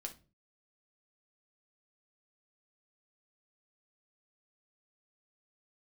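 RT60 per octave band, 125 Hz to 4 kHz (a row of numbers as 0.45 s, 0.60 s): 0.45 s, 0.50 s, 0.40 s, 0.30 s, 0.25 s, 0.25 s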